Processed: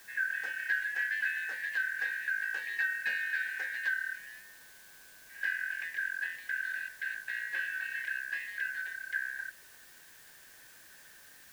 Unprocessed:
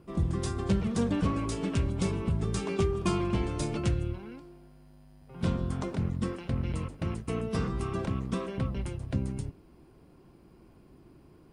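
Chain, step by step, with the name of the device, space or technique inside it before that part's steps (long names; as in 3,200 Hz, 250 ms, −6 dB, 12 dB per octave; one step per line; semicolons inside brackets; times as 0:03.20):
split-band scrambled radio (band-splitting scrambler in four parts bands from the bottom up 4123; band-pass filter 370–3,100 Hz; white noise bed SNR 20 dB)
level −5 dB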